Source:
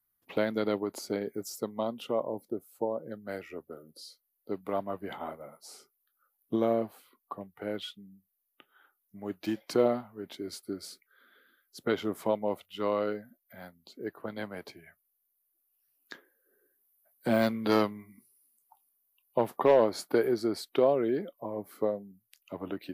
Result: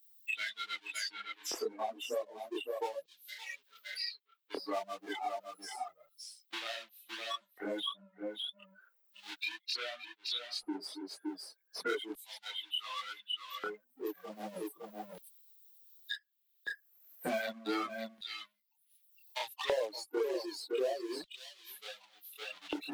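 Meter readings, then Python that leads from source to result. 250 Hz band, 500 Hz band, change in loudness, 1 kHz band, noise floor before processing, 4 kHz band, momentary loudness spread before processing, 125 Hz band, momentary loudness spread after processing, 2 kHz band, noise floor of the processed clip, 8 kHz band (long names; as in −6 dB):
−11.5 dB, −10.0 dB, −8.0 dB, −5.5 dB, −79 dBFS, +6.0 dB, 19 LU, below −20 dB, 12 LU, +1.0 dB, −76 dBFS, 0.0 dB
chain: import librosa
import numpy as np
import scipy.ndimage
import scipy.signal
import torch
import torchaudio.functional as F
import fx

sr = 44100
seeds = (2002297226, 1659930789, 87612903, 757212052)

p1 = fx.bin_expand(x, sr, power=3.0)
p2 = fx.high_shelf(p1, sr, hz=7400.0, db=-10.0)
p3 = fx.spec_erase(p2, sr, start_s=13.82, length_s=1.68, low_hz=1200.0, high_hz=8000.0)
p4 = fx.power_curve(p3, sr, exponent=0.7)
p5 = p4 + fx.echo_single(p4, sr, ms=563, db=-9.0, dry=0)
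p6 = fx.filter_lfo_highpass(p5, sr, shape='square', hz=0.33, low_hz=430.0, high_hz=3600.0, q=2.6)
p7 = fx.peak_eq(p6, sr, hz=90.0, db=-12.5, octaves=2.0)
p8 = fx.chorus_voices(p7, sr, voices=6, hz=1.1, base_ms=26, depth_ms=3.0, mix_pct=60)
p9 = fx.band_squash(p8, sr, depth_pct=100)
y = p9 * librosa.db_to_amplitude(4.0)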